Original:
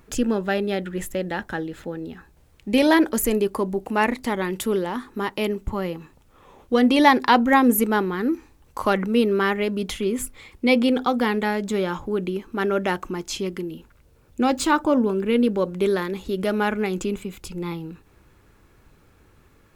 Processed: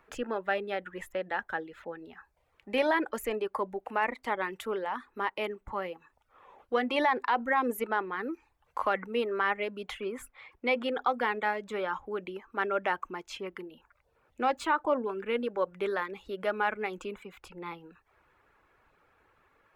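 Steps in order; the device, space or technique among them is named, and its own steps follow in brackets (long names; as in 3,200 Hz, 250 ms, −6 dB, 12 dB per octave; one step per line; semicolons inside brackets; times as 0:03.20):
reverb reduction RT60 0.51 s
DJ mixer with the lows and highs turned down (three-way crossover with the lows and the highs turned down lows −17 dB, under 510 Hz, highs −17 dB, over 2,700 Hz; brickwall limiter −15 dBFS, peak gain reduction 10.5 dB)
level −1.5 dB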